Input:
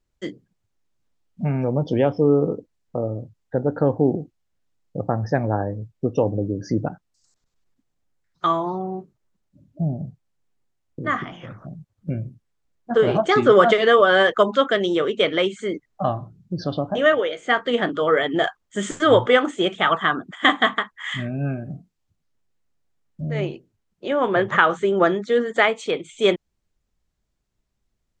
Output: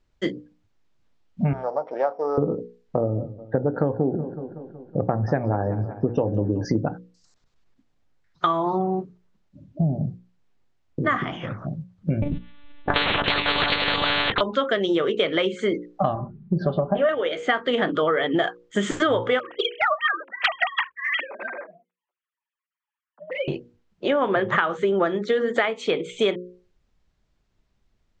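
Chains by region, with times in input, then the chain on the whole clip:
0:01.53–0:02.38: samples sorted by size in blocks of 8 samples + Chebyshev band-pass filter 660–1,400 Hz
0:03.01–0:06.65: low-pass filter 2,700 Hz 6 dB per octave + feedback echo with a swinging delay time 186 ms, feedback 61%, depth 88 cents, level −19 dB
0:12.22–0:14.41: high-shelf EQ 2,300 Hz +10.5 dB + one-pitch LPC vocoder at 8 kHz 290 Hz + every bin compressed towards the loudest bin 10 to 1
0:16.15–0:17.09: low-pass filter 1,800 Hz + comb filter 5.1 ms, depth 80%
0:19.39–0:23.48: three sine waves on the formant tracks + high-pass filter 480 Hz 24 dB per octave + flanger swept by the level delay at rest 8.3 ms, full sweep at −14.5 dBFS
whole clip: low-pass filter 4,900 Hz 12 dB per octave; mains-hum notches 60/120/180/240/300/360/420/480/540 Hz; downward compressor 10 to 1, threshold −25 dBFS; level +7 dB

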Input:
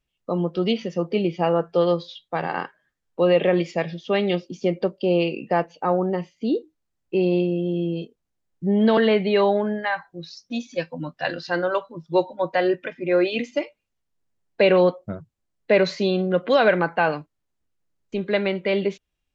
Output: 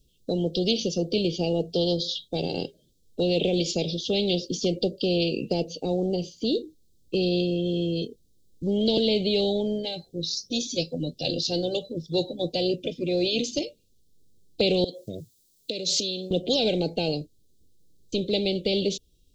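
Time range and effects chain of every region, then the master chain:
0:14.84–0:16.31: downward compressor 4 to 1, threshold −33 dBFS + spectral tilt +3.5 dB per octave
whole clip: elliptic band-stop filter 470–3,700 Hz, stop band 50 dB; dynamic equaliser 880 Hz, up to +6 dB, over −48 dBFS, Q 3; every bin compressed towards the loudest bin 2 to 1

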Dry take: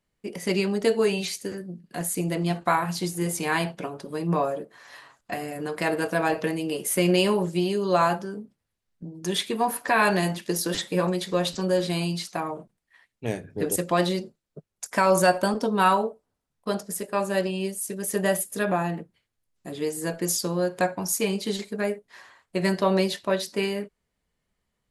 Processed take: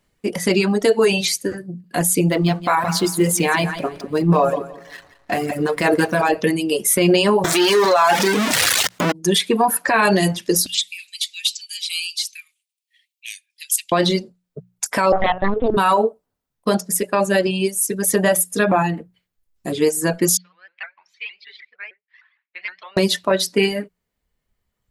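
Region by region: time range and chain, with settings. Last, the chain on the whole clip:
0:02.31–0:06.29: slack as between gear wheels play −42.5 dBFS + repeating echo 171 ms, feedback 33%, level −8 dB
0:07.44–0:09.12: converter with a step at zero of −24.5 dBFS + meter weighting curve A + envelope flattener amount 50%
0:10.66–0:13.92: Butterworth high-pass 2,400 Hz 48 dB per octave + highs frequency-modulated by the lows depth 0.4 ms
0:15.12–0:15.77: double-tracking delay 21 ms −10 dB + linear-prediction vocoder at 8 kHz pitch kept + highs frequency-modulated by the lows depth 0.5 ms
0:20.37–0:22.97: four-pole ladder band-pass 2,500 Hz, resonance 55% + high-frequency loss of the air 250 metres + pitch modulation by a square or saw wave saw up 6.5 Hz, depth 160 cents
whole clip: reverb reduction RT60 1.7 s; mains-hum notches 60/120/180 Hz; boost into a limiter +17.5 dB; level −5.5 dB

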